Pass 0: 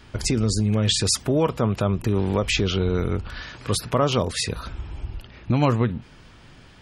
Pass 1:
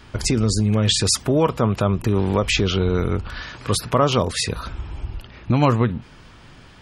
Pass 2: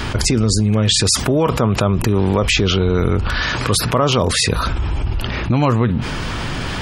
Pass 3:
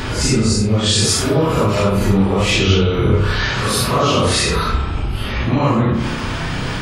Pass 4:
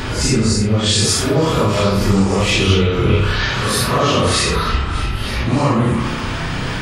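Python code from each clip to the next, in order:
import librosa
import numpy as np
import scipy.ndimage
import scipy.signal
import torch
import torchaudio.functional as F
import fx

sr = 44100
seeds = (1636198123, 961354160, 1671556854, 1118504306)

y1 = fx.peak_eq(x, sr, hz=1100.0, db=2.5, octaves=0.77)
y1 = y1 * 10.0 ** (2.5 / 20.0)
y2 = fx.env_flatten(y1, sr, amount_pct=70)
y3 = fx.phase_scramble(y2, sr, seeds[0], window_ms=200)
y3 = fx.rev_spring(y3, sr, rt60_s=1.3, pass_ms=(31,), chirp_ms=25, drr_db=5.5)
y4 = fx.echo_stepped(y3, sr, ms=306, hz=1500.0, octaves=0.7, feedback_pct=70, wet_db=-6.0)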